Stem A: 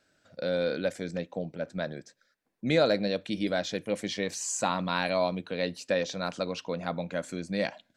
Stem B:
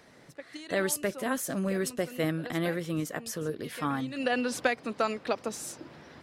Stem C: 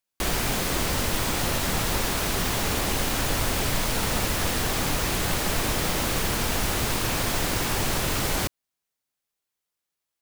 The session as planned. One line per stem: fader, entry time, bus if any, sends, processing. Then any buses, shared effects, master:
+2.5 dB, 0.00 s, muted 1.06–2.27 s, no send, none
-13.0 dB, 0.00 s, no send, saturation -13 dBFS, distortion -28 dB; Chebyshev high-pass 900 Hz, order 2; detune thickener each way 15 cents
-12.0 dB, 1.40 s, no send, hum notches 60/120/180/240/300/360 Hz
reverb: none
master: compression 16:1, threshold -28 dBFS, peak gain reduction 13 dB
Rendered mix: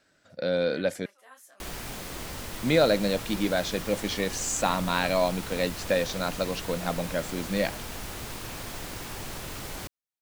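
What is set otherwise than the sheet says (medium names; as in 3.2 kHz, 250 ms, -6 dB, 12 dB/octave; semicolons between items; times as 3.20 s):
stem C: missing hum notches 60/120/180/240/300/360 Hz; master: missing compression 16:1, threshold -28 dBFS, peak gain reduction 13 dB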